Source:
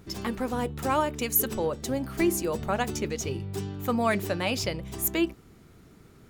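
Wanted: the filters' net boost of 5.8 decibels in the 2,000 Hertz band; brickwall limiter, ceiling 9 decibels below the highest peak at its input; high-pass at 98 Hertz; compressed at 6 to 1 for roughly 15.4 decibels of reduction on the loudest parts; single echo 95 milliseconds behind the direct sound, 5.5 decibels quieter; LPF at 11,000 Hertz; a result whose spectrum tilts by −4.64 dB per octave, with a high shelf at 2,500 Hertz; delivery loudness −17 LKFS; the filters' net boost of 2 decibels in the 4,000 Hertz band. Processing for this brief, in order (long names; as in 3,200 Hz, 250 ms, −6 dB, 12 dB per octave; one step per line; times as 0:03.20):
high-pass filter 98 Hz
low-pass filter 11,000 Hz
parametric band 2,000 Hz +8.5 dB
high-shelf EQ 2,500 Hz −5 dB
parametric band 4,000 Hz +4 dB
downward compressor 6 to 1, threshold −36 dBFS
brickwall limiter −32 dBFS
single-tap delay 95 ms −5.5 dB
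level +23.5 dB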